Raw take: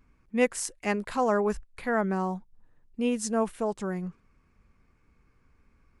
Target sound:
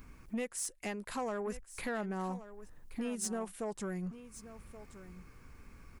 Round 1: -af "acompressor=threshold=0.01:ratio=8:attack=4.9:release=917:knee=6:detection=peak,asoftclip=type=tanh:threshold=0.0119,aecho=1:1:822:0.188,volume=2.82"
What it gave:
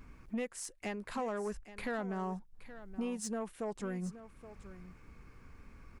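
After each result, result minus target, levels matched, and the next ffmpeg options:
echo 304 ms early; 8 kHz band -5.0 dB
-af "acompressor=threshold=0.01:ratio=8:attack=4.9:release=917:knee=6:detection=peak,asoftclip=type=tanh:threshold=0.0119,aecho=1:1:1126:0.188,volume=2.82"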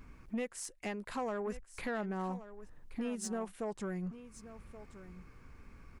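8 kHz band -4.5 dB
-af "acompressor=threshold=0.01:ratio=8:attack=4.9:release=917:knee=6:detection=peak,highshelf=f=6700:g=11.5,asoftclip=type=tanh:threshold=0.0119,aecho=1:1:1126:0.188,volume=2.82"

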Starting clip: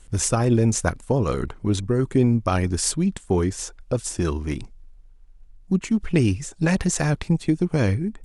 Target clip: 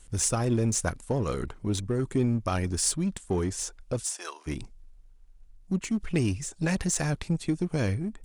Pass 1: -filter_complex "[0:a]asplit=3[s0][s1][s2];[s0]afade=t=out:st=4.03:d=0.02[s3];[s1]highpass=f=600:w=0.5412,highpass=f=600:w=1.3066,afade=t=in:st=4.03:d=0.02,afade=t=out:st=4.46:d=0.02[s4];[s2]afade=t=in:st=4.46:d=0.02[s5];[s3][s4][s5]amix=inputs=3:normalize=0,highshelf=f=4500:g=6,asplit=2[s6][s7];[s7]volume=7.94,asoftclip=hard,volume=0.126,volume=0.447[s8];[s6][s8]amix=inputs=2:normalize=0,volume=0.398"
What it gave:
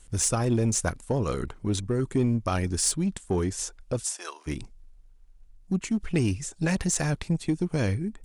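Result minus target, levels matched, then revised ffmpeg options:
overload inside the chain: distortion -6 dB
-filter_complex "[0:a]asplit=3[s0][s1][s2];[s0]afade=t=out:st=4.03:d=0.02[s3];[s1]highpass=f=600:w=0.5412,highpass=f=600:w=1.3066,afade=t=in:st=4.03:d=0.02,afade=t=out:st=4.46:d=0.02[s4];[s2]afade=t=in:st=4.46:d=0.02[s5];[s3][s4][s5]amix=inputs=3:normalize=0,highshelf=f=4500:g=6,asplit=2[s6][s7];[s7]volume=22.4,asoftclip=hard,volume=0.0447,volume=0.447[s8];[s6][s8]amix=inputs=2:normalize=0,volume=0.398"

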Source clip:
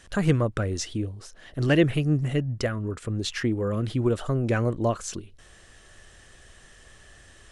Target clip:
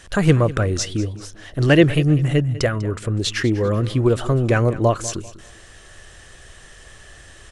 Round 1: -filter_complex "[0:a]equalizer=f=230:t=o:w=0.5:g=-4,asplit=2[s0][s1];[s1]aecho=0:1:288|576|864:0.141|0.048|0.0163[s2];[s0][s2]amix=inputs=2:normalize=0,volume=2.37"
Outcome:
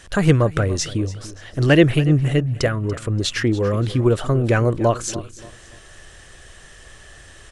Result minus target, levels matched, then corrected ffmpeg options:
echo 92 ms late
-filter_complex "[0:a]equalizer=f=230:t=o:w=0.5:g=-4,asplit=2[s0][s1];[s1]aecho=0:1:196|392|588:0.141|0.048|0.0163[s2];[s0][s2]amix=inputs=2:normalize=0,volume=2.37"

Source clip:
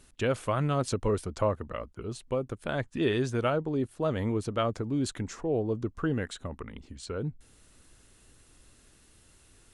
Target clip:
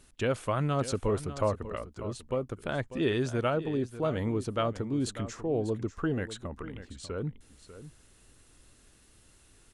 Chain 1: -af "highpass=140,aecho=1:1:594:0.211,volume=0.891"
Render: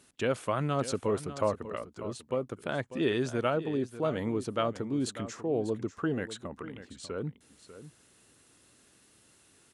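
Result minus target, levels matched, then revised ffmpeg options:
125 Hz band -3.5 dB
-af "aecho=1:1:594:0.211,volume=0.891"

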